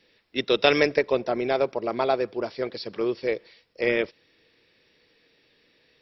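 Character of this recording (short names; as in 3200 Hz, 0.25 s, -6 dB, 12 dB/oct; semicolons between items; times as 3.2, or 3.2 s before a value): noise floor -65 dBFS; spectral tilt -2.0 dB/oct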